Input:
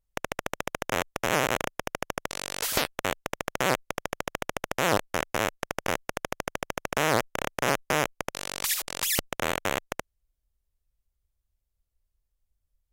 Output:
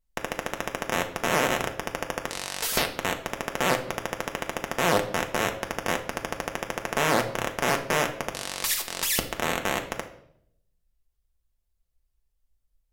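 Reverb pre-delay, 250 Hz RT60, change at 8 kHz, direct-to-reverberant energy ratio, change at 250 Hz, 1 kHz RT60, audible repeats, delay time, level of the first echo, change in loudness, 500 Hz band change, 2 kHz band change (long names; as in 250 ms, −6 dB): 4 ms, 0.85 s, +1.0 dB, 3.0 dB, +2.5 dB, 0.60 s, no echo audible, no echo audible, no echo audible, +1.5 dB, +2.0 dB, +1.5 dB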